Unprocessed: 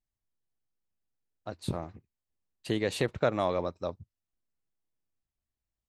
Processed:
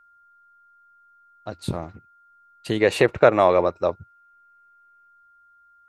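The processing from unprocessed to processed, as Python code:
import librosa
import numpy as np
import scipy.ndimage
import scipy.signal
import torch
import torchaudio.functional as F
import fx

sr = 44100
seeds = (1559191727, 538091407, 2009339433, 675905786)

y = fx.spec_box(x, sr, start_s=2.8, length_s=2.28, low_hz=310.0, high_hz=2900.0, gain_db=7)
y = y + 10.0 ** (-59.0 / 20.0) * np.sin(2.0 * np.pi * 1400.0 * np.arange(len(y)) / sr)
y = y * 10.0 ** (5.5 / 20.0)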